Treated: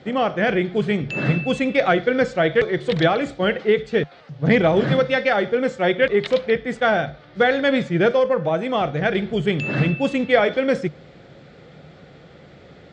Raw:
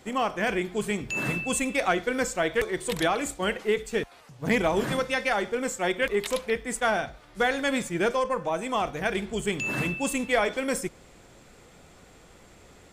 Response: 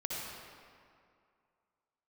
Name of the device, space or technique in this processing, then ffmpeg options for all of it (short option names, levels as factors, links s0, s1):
guitar cabinet: -af "highpass=81,equalizer=f=150:t=q:w=4:g=10,equalizer=f=540:t=q:w=4:g=4,equalizer=f=1000:t=q:w=4:g=-9,equalizer=f=2600:t=q:w=4:g=-5,lowpass=f=4200:w=0.5412,lowpass=f=4200:w=1.3066,volume=2.24"